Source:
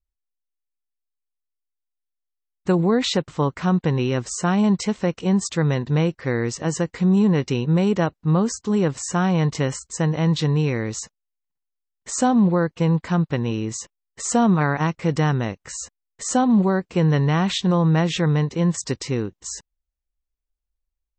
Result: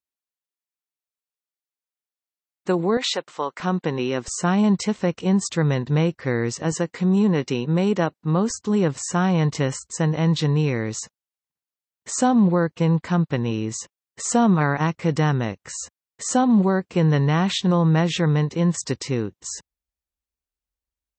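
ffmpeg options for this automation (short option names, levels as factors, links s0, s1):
-af "asetnsamples=n=441:p=0,asendcmd='2.97 highpass f 540;3.6 highpass f 220;4.28 highpass f 66;6.72 highpass f 160;8.5 highpass f 68',highpass=240"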